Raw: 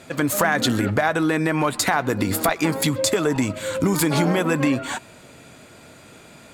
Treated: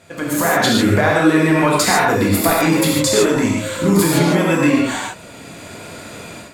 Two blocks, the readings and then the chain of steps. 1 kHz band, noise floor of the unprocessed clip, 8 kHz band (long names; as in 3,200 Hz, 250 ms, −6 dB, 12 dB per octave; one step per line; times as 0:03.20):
+5.5 dB, −47 dBFS, +5.5 dB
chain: reverb whose tail is shaped and stops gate 180 ms flat, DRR −4 dB
flanger 0.96 Hz, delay 1.1 ms, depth 6.9 ms, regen −76%
automatic gain control gain up to 12.5 dB
level −1 dB